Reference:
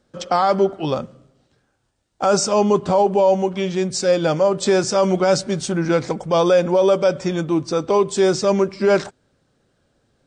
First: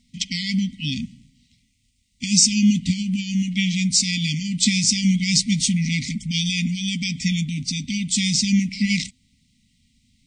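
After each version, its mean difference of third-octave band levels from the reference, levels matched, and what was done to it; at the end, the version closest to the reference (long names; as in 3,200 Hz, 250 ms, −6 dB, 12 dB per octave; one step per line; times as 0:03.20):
15.5 dB: linear-phase brick-wall band-stop 270–1,900 Hz
parametric band 130 Hz −8.5 dB 0.82 octaves
level +7.5 dB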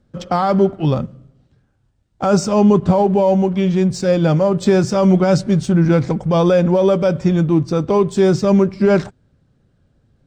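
4.0 dB: bass and treble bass +14 dB, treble −5 dB
in parallel at −9 dB: dead-zone distortion −31 dBFS
on the sum: level −3 dB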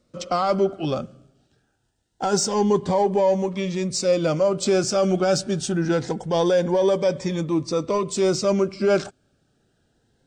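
2.0 dB: in parallel at −9 dB: soft clipping −19.5 dBFS, distortion −8 dB
on the sum: phaser whose notches keep moving one way rising 0.25 Hz
level −3.5 dB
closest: third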